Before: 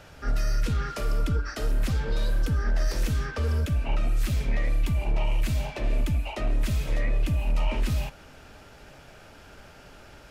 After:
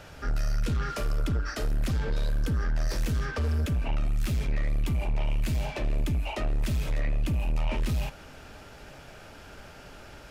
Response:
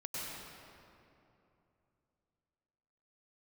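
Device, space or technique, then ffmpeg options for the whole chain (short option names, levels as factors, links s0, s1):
saturation between pre-emphasis and de-emphasis: -af "highshelf=f=4800:g=10.5,asoftclip=type=tanh:threshold=0.0596,highshelf=f=4800:g=-10.5,volume=1.26"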